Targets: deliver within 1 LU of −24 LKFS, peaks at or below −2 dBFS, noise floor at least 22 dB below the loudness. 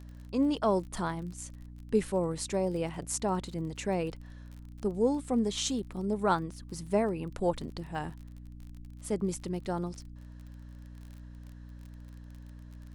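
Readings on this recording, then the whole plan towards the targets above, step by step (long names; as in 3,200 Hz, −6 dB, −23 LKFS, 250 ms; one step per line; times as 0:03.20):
crackle rate 33 per second; mains hum 60 Hz; hum harmonics up to 300 Hz; level of the hum −45 dBFS; integrated loudness −32.0 LKFS; sample peak −14.5 dBFS; target loudness −24.0 LKFS
→ click removal
mains-hum notches 60/120/180/240/300 Hz
level +8 dB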